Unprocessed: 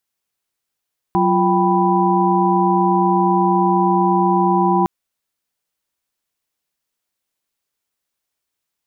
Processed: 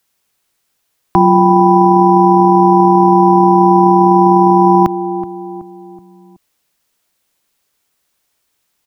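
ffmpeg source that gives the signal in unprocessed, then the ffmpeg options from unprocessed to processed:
-f lavfi -i "aevalsrc='0.126*(sin(2*PI*185*t)+sin(2*PI*349.23*t)+sin(2*PI*783.99*t)+sin(2*PI*987.77*t))':d=3.71:s=44100"
-filter_complex "[0:a]acrossover=split=140|620[a][b][c];[a]acrusher=samples=8:mix=1:aa=0.000001[d];[d][b][c]amix=inputs=3:normalize=0,asplit=2[e][f];[f]adelay=375,lowpass=f=940:p=1,volume=-17.5dB,asplit=2[g][h];[h]adelay=375,lowpass=f=940:p=1,volume=0.5,asplit=2[i][j];[j]adelay=375,lowpass=f=940:p=1,volume=0.5,asplit=2[k][l];[l]adelay=375,lowpass=f=940:p=1,volume=0.5[m];[e][g][i][k][m]amix=inputs=5:normalize=0,alimiter=level_in=13dB:limit=-1dB:release=50:level=0:latency=1"

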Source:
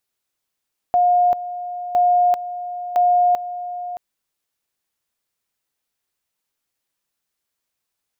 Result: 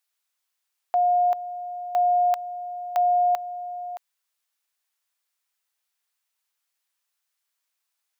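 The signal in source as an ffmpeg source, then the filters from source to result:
-f lavfi -i "aevalsrc='pow(10,(-12-13.5*gte(mod(t,1.01),0.39))/20)*sin(2*PI*713*t)':d=3.03:s=44100"
-af "highpass=850"

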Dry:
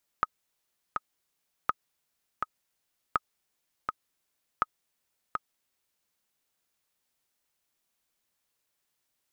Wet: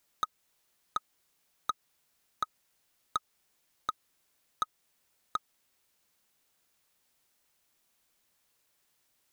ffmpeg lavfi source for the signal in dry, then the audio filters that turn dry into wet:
-f lavfi -i "aevalsrc='pow(10,(-11-5*gte(mod(t,2*60/82),60/82))/20)*sin(2*PI*1260*mod(t,60/82))*exp(-6.91*mod(t,60/82)/0.03)':d=5.85:s=44100"
-filter_complex "[0:a]asplit=2[a][b];[b]alimiter=limit=-19.5dB:level=0:latency=1:release=250,volume=0dB[c];[a][c]amix=inputs=2:normalize=0,asoftclip=type=hard:threshold=-22dB"

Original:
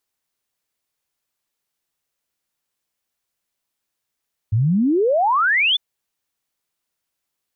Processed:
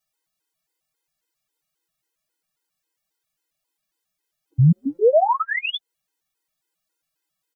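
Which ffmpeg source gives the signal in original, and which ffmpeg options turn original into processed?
-f lavfi -i "aevalsrc='0.2*clip(min(t,1.25-t)/0.01,0,1)*sin(2*PI*100*1.25/log(3600/100)*(exp(log(3600/100)*t/1.25)-1))':d=1.25:s=44100"
-filter_complex "[0:a]aecho=1:1:6.3:0.9,acrossover=split=790[a][b];[b]alimiter=limit=-18dB:level=0:latency=1:release=138[c];[a][c]amix=inputs=2:normalize=0,afftfilt=real='re*gt(sin(2*PI*3.7*pts/sr)*(1-2*mod(floor(b*sr/1024/270),2)),0)':imag='im*gt(sin(2*PI*3.7*pts/sr)*(1-2*mod(floor(b*sr/1024/270),2)),0)':win_size=1024:overlap=0.75"

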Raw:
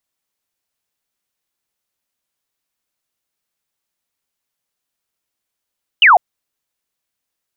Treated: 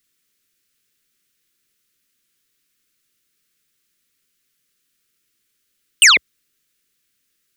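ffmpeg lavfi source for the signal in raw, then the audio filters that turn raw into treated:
-f lavfi -i "aevalsrc='0.596*clip(t/0.002,0,1)*clip((0.15-t)/0.002,0,1)*sin(2*PI*3100*0.15/log(660/3100)*(exp(log(660/3100)*t/0.15)-1))':d=0.15:s=44100"
-af "equalizer=f=66:w=2.3:g=-9,aeval=exprs='0.631*sin(PI/2*2*val(0)/0.631)':c=same,asuperstop=centerf=790:order=4:qfactor=0.84"

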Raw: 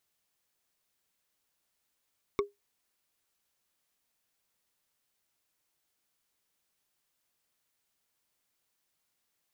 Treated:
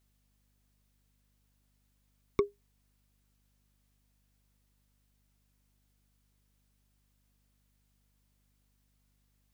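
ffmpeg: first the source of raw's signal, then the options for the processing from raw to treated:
-f lavfi -i "aevalsrc='0.0891*pow(10,-3*t/0.17)*sin(2*PI*406*t)+0.0562*pow(10,-3*t/0.05)*sin(2*PI*1119.3*t)+0.0355*pow(10,-3*t/0.022)*sin(2*PI*2194*t)+0.0224*pow(10,-3*t/0.012)*sin(2*PI*3626.8*t)+0.0141*pow(10,-3*t/0.008)*sin(2*PI*5416*t)':d=0.45:s=44100"
-filter_complex "[0:a]acrossover=split=390|2300[a][b][c];[a]acontrast=82[d];[d][b][c]amix=inputs=3:normalize=0,aeval=exprs='val(0)+0.000251*(sin(2*PI*50*n/s)+sin(2*PI*2*50*n/s)/2+sin(2*PI*3*50*n/s)/3+sin(2*PI*4*50*n/s)/4+sin(2*PI*5*50*n/s)/5)':c=same"

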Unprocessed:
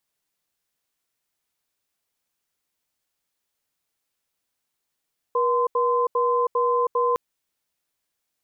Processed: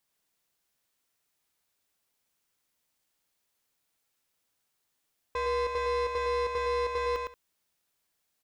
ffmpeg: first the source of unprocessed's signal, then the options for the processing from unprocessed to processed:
-f lavfi -i "aevalsrc='0.0891*(sin(2*PI*482*t)+sin(2*PI*1030*t))*clip(min(mod(t,0.4),0.32-mod(t,0.4))/0.005,0,1)':d=1.81:s=44100"
-filter_complex "[0:a]asoftclip=type=tanh:threshold=-29dB,asplit=2[a][b];[b]aecho=0:1:110|180:0.596|0.1[c];[a][c]amix=inputs=2:normalize=0"

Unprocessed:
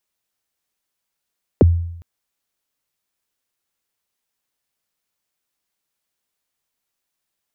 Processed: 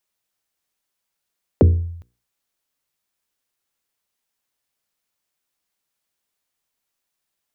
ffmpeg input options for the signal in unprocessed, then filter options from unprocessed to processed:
-f lavfi -i "aevalsrc='0.562*pow(10,-3*t/0.77)*sin(2*PI*(590*0.022/log(85/590)*(exp(log(85/590)*min(t,0.022)/0.022)-1)+85*max(t-0.022,0)))':d=0.41:s=44100"
-af "bandreject=f=60:t=h:w=6,bandreject=f=120:t=h:w=6,bandreject=f=180:t=h:w=6,bandreject=f=240:t=h:w=6,bandreject=f=300:t=h:w=6,bandreject=f=360:t=h:w=6,bandreject=f=420:t=h:w=6,bandreject=f=480:t=h:w=6"

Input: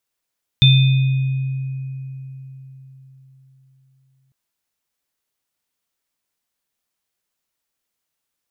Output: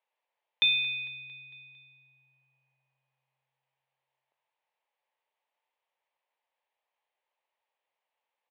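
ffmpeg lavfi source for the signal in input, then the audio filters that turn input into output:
-f lavfi -i "aevalsrc='0.398*pow(10,-3*t/4.28)*sin(2*PI*133*t)+0.0841*pow(10,-3*t/2.21)*sin(2*PI*2490*t)+0.299*pow(10,-3*t/0.93)*sin(2*PI*3570*t)':d=3.7:s=44100"
-af "highpass=f=480:w=0.5412,highpass=f=480:w=1.3066,equalizer=f=550:t=q:w=4:g=4,equalizer=f=880:t=q:w=4:g=9,equalizer=f=1.4k:t=q:w=4:g=-9,lowpass=f=2.9k:w=0.5412,lowpass=f=2.9k:w=1.3066,aecho=1:1:226|452|678|904|1130:0.119|0.0666|0.0373|0.0209|0.0117"

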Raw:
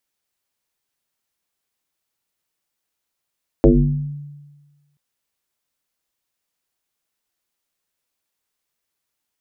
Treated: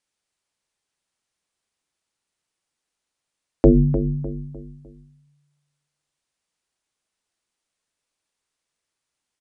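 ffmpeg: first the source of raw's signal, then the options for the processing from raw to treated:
-f lavfi -i "aevalsrc='0.562*pow(10,-3*t/1.33)*sin(2*PI*145*t+4.3*pow(10,-3*t/0.86)*sin(2*PI*0.68*145*t))':d=1.33:s=44100"
-filter_complex "[0:a]asplit=2[a][b];[b]adelay=302,lowpass=f=1.2k:p=1,volume=-10dB,asplit=2[c][d];[d]adelay=302,lowpass=f=1.2k:p=1,volume=0.41,asplit=2[e][f];[f]adelay=302,lowpass=f=1.2k:p=1,volume=0.41,asplit=2[g][h];[h]adelay=302,lowpass=f=1.2k:p=1,volume=0.41[i];[c][e][g][i]amix=inputs=4:normalize=0[j];[a][j]amix=inputs=2:normalize=0,aresample=22050,aresample=44100"

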